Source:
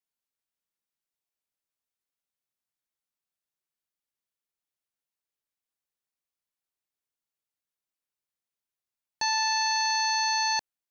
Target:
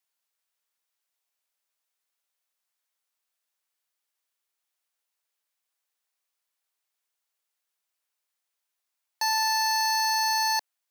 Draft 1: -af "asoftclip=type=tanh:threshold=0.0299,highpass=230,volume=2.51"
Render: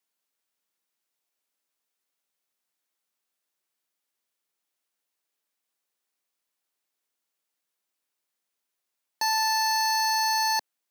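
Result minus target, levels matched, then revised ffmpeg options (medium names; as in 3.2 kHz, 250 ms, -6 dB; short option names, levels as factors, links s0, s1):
250 Hz band +10.5 dB
-af "asoftclip=type=tanh:threshold=0.0299,highpass=580,volume=2.51"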